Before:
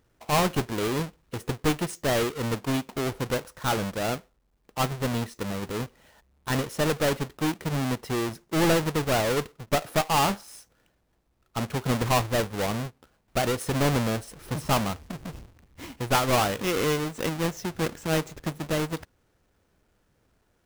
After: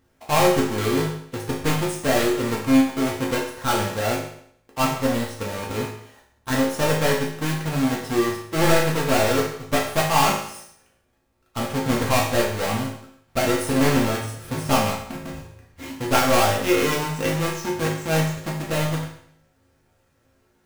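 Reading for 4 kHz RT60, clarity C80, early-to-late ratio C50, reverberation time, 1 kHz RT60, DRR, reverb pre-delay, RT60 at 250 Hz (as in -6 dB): 0.65 s, 8.5 dB, 4.5 dB, 0.65 s, 0.65 s, -4.0 dB, 4 ms, 0.70 s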